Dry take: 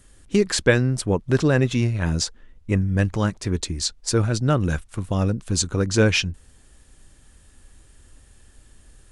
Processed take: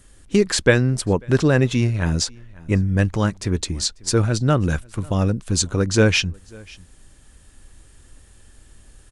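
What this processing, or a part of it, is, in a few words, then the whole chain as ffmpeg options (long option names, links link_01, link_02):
ducked delay: -filter_complex "[0:a]asplit=3[link_01][link_02][link_03];[link_02]adelay=543,volume=-8.5dB[link_04];[link_03]apad=whole_len=425824[link_05];[link_04][link_05]sidechaincompress=threshold=-36dB:ratio=12:attack=7.8:release=984[link_06];[link_01][link_06]amix=inputs=2:normalize=0,volume=2dB"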